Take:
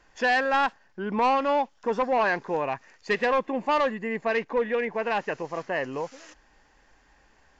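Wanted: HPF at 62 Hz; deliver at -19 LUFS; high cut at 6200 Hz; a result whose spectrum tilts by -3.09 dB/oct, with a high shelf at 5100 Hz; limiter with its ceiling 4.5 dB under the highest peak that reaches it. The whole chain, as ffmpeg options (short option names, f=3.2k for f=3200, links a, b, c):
-af "highpass=62,lowpass=6.2k,highshelf=f=5.1k:g=-6.5,volume=10.5dB,alimiter=limit=-10dB:level=0:latency=1"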